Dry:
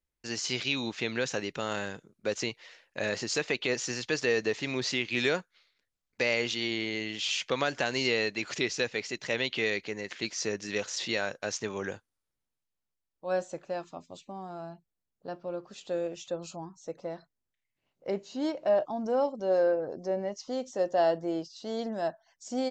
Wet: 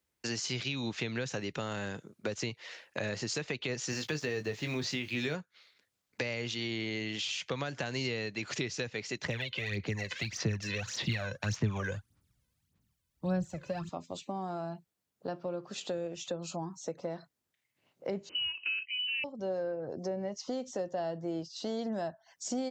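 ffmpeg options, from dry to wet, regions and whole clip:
ffmpeg -i in.wav -filter_complex "[0:a]asettb=1/sr,asplit=3[link_01][link_02][link_03];[link_01]atrim=end=3.904[link_04];[link_02]atrim=start=3.9:end=5.35,asetpts=PTS-STARTPTS,afade=type=in:duration=0.004:curve=qsin,afade=type=out:start_time=1.446:duration=0.004:curve=qsin,acrusher=bits=8:mix=0:aa=0.5,asplit=2[link_05][link_06];[link_06]adelay=20,volume=-8dB[link_07];[link_05][link_07]amix=inputs=2:normalize=0,atrim=end_sample=63945[link_08];[link_03]atrim=start=5.346[link_09];[link_04][link_08]acrossfade=duration=0.004:curve1=hsin:curve2=qsin[link_10];[link_10][link_09]acrossfade=duration=0.004:curve1=qsin:curve2=hsin,asettb=1/sr,asplit=3[link_11][link_12][link_13];[link_11]atrim=end=9.244[link_14];[link_12]atrim=start=9.24:end=13.89,asetpts=PTS-STARTPTS,afade=type=in:duration=0.004:curve=qsin,afade=type=out:start_time=4.646:duration=0.004:curve=qsin,asubboost=boost=9.5:cutoff=190,acrossover=split=120|440|4000[link_15][link_16][link_17][link_18];[link_15]acompressor=threshold=-48dB:ratio=3[link_19];[link_16]acompressor=threshold=-44dB:ratio=3[link_20];[link_17]acompressor=threshold=-34dB:ratio=3[link_21];[link_18]acompressor=threshold=-52dB:ratio=3[link_22];[link_19][link_20][link_21][link_22]amix=inputs=4:normalize=0,aphaser=in_gain=1:out_gain=1:delay=2:decay=0.66:speed=1.7:type=sinusoidal[link_23];[link_13]atrim=start=13.886[link_24];[link_14][link_23]acrossfade=duration=0.004:curve1=hsin:curve2=qsin[link_25];[link_25][link_24]acrossfade=duration=0.004:curve1=qsin:curve2=hsin,asettb=1/sr,asplit=3[link_26][link_27][link_28];[link_26]atrim=end=18.294[link_29];[link_27]atrim=start=18.29:end=19.24,asetpts=PTS-STARTPTS,afade=type=in:duration=0.004:curve=qsin,afade=type=out:start_time=0.946:duration=0.004:curve=qsin,equalizer=frequency=170:width=0.56:gain=10,lowpass=frequency=2700:width_type=q:width=0.5098,lowpass=frequency=2700:width_type=q:width=0.6013,lowpass=frequency=2700:width_type=q:width=0.9,lowpass=frequency=2700:width_type=q:width=2.563,afreqshift=-3200[link_30];[link_28]atrim=start=19.236[link_31];[link_29][link_30]acrossfade=duration=0.004:curve1=hsin:curve2=qsin[link_32];[link_32][link_31]acrossfade=duration=0.004:curve1=qsin:curve2=hsin,highpass=92,acrossover=split=150[link_33][link_34];[link_34]acompressor=threshold=-42dB:ratio=6[link_35];[link_33][link_35]amix=inputs=2:normalize=0,volume=7.5dB" out.wav

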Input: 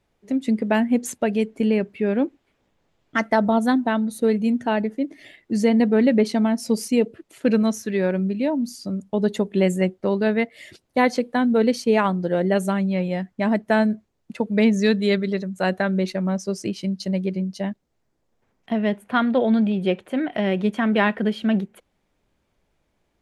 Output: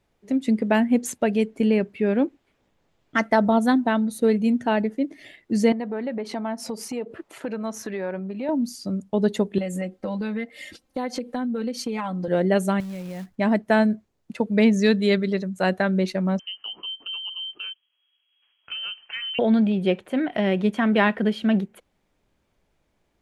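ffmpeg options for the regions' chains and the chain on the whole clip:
ffmpeg -i in.wav -filter_complex "[0:a]asettb=1/sr,asplit=3[link_01][link_02][link_03];[link_01]atrim=end=5.724[link_04];[link_02]atrim=start=5.72:end=8.49,asetpts=PTS-STARTPTS,afade=type=in:duration=0.004:curve=qsin,afade=type=out:start_time=2.766:duration=0.004:curve=qsin,acompressor=threshold=-32dB:ratio=6:attack=3.2:release=140:knee=1:detection=peak,equalizer=frequency=960:width=0.53:gain=12[link_05];[link_03]atrim=start=8.486[link_06];[link_04][link_05]acrossfade=duration=0.004:curve1=hsin:curve2=qsin[link_07];[link_07][link_06]acrossfade=duration=0.004:curve1=qsin:curve2=hsin,asettb=1/sr,asplit=3[link_08][link_09][link_10];[link_08]atrim=end=9.584[link_11];[link_09]atrim=start=9.58:end=12.28,asetpts=PTS-STARTPTS,afade=type=in:duration=0.004:curve=qsin,afade=type=out:start_time=2.696:duration=0.004:curve=qsin,aecho=1:1:3.8:0.91,atrim=end_sample=119070,acompressor=threshold=-25dB:ratio=6:attack=3.2:release=140:knee=1:detection=peak[link_12];[link_10]atrim=start=12.276[link_13];[link_11][link_12]acrossfade=duration=0.004:curve1=hsin:curve2=qsin[link_14];[link_14][link_13]acrossfade=duration=0.004:curve1=qsin:curve2=hsin,asettb=1/sr,asplit=3[link_15][link_16][link_17];[link_15]atrim=end=12.804[link_18];[link_16]atrim=start=12.8:end=13.36,asetpts=PTS-STARTPTS,afade=type=in:duration=0.004:curve=qsin,afade=type=out:start_time=0.556:duration=0.004:curve=qsin,lowshelf=frequency=110:gain=11,acompressor=threshold=-30dB:ratio=20:attack=3.2:release=140:knee=1:detection=peak,acrusher=bits=4:mode=log:mix=0:aa=0.000001[link_19];[link_17]atrim=start=13.356[link_20];[link_18][link_19]acrossfade=duration=0.004:curve1=hsin:curve2=qsin[link_21];[link_21][link_20]acrossfade=duration=0.004:curve1=qsin:curve2=hsin,asettb=1/sr,asplit=3[link_22][link_23][link_24];[link_22]atrim=end=16.394[link_25];[link_23]atrim=start=16.39:end=19.39,asetpts=PTS-STARTPTS,afade=type=in:duration=0.004:curve=qsin,afade=type=out:start_time=2.996:duration=0.004:curve=qsin,lowpass=frequency=2800:width_type=q:width=0.5098,lowpass=frequency=2800:width_type=q:width=0.6013,lowpass=frequency=2800:width_type=q:width=0.9,lowpass=frequency=2800:width_type=q:width=2.563,afreqshift=-3300,lowshelf=frequency=150:gain=-4.5,acompressor=threshold=-34dB:ratio=2.5:attack=3.2:release=140:knee=1:detection=peak[link_26];[link_24]atrim=start=19.386[link_27];[link_25][link_26]acrossfade=duration=0.004:curve1=hsin:curve2=qsin[link_28];[link_28][link_27]acrossfade=duration=0.004:curve1=qsin:curve2=hsin" out.wav

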